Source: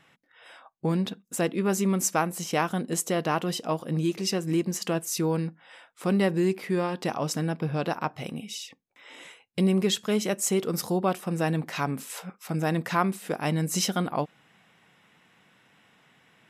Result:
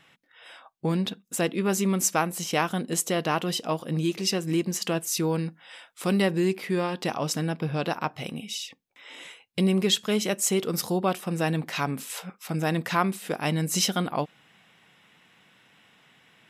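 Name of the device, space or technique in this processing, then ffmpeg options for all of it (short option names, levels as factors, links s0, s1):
presence and air boost: -filter_complex "[0:a]asettb=1/sr,asplit=3[s0][s1][s2];[s0]atrim=end=5.464[s3];[s1]atrim=start=5.46:end=6.22,asetpts=PTS-STARTPTS,afade=t=in:d=0.004:c=qsin,afade=t=out:st=0.756:d=0.004:c=qsin,equalizer=f=12000:t=o:w=2.5:g=5.5[s4];[s2]atrim=start=6.216[s5];[s3][s4]acrossfade=d=0.004:c1=hsin:c2=qsin[s6];[s6][s5]acrossfade=d=0.004:c1=qsin:c2=hsin,equalizer=f=3300:t=o:w=1.3:g=4.5,highshelf=f=9300:g=3.5"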